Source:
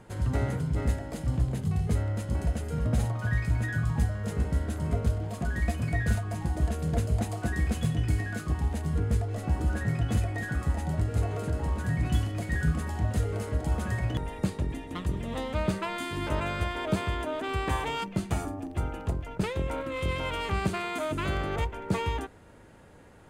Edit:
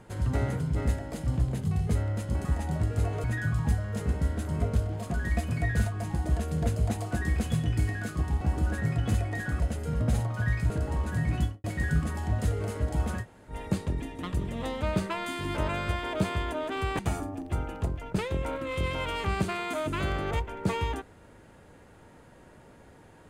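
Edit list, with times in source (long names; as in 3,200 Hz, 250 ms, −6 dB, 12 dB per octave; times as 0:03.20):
0:02.45–0:03.55: swap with 0:10.63–0:11.42
0:08.72–0:09.44: remove
0:12.07–0:12.36: fade out and dull
0:13.93–0:14.24: fill with room tone, crossfade 0.10 s
0:17.71–0:18.24: remove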